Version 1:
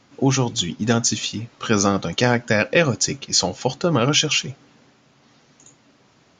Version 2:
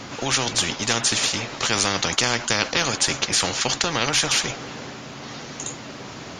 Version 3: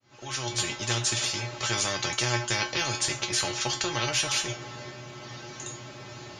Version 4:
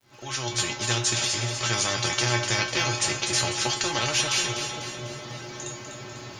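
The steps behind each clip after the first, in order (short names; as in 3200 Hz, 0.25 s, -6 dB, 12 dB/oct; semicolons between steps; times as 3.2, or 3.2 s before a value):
spectral compressor 4:1; gain +1 dB
opening faded in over 0.64 s; resonator 120 Hz, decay 0.22 s, harmonics odd, mix 90%; gain +4.5 dB
crackle 310/s -54 dBFS; split-band echo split 680 Hz, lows 0.538 s, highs 0.248 s, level -7.5 dB; gain +2 dB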